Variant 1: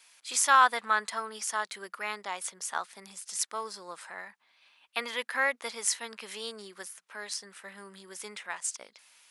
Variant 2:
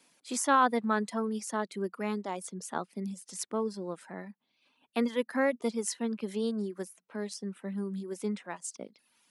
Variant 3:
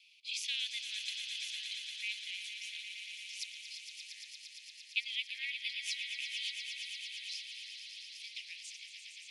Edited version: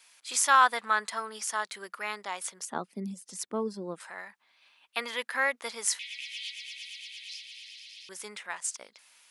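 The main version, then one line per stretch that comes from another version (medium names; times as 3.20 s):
1
2.65–4.00 s: from 2
5.99–8.09 s: from 3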